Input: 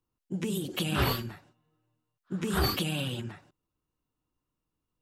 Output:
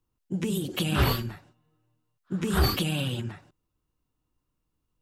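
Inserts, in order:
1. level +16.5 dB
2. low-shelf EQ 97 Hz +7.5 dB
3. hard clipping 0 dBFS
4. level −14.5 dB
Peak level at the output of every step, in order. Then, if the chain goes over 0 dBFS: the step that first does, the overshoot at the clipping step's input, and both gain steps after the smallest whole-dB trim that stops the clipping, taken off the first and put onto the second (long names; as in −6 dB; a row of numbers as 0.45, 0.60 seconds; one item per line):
+2.5, +5.0, 0.0, −14.5 dBFS
step 1, 5.0 dB
step 1 +11.5 dB, step 4 −9.5 dB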